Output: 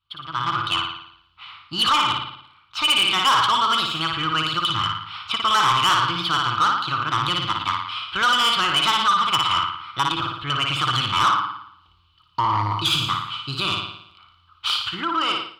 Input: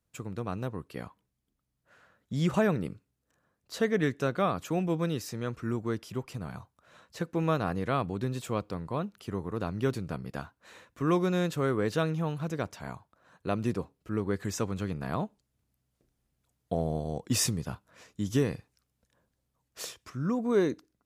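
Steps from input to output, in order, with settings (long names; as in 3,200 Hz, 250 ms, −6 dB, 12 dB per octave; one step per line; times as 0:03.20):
pitch vibrato 1.2 Hz 42 cents
wrong playback speed 33 rpm record played at 45 rpm
flutter between parallel walls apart 9.8 metres, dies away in 0.69 s
automatic gain control gain up to 16 dB
hollow resonant body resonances 330/3,000 Hz, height 15 dB, ringing for 90 ms
brickwall limiter −3.5 dBFS, peak gain reduction 7.5 dB
drawn EQ curve 110 Hz 0 dB, 230 Hz −25 dB, 320 Hz −25 dB, 610 Hz −28 dB, 1,200 Hz +14 dB, 1,800 Hz −13 dB, 3,000 Hz +10 dB, 4,300 Hz +3 dB, 6,300 Hz −20 dB, 11,000 Hz −28 dB
soft clipping −18.5 dBFS, distortion −9 dB
low-shelf EQ 220 Hz −6.5 dB
level +5.5 dB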